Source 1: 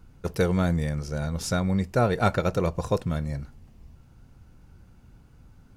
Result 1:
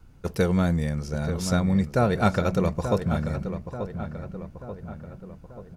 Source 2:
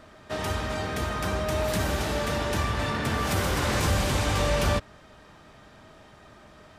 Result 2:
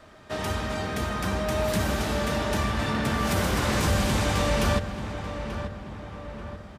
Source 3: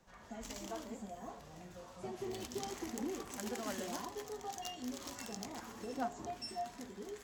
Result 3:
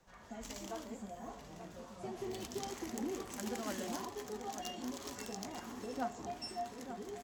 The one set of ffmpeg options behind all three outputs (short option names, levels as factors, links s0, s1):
-filter_complex "[0:a]adynamicequalizer=threshold=0.00562:dfrequency=210:dqfactor=5:tfrequency=210:tqfactor=5:attack=5:release=100:ratio=0.375:range=3:mode=boostabove:tftype=bell,asplit=2[s0][s1];[s1]adelay=885,lowpass=f=2400:p=1,volume=0.355,asplit=2[s2][s3];[s3]adelay=885,lowpass=f=2400:p=1,volume=0.54,asplit=2[s4][s5];[s5]adelay=885,lowpass=f=2400:p=1,volume=0.54,asplit=2[s6][s7];[s7]adelay=885,lowpass=f=2400:p=1,volume=0.54,asplit=2[s8][s9];[s9]adelay=885,lowpass=f=2400:p=1,volume=0.54,asplit=2[s10][s11];[s11]adelay=885,lowpass=f=2400:p=1,volume=0.54[s12];[s0][s2][s4][s6][s8][s10][s12]amix=inputs=7:normalize=0"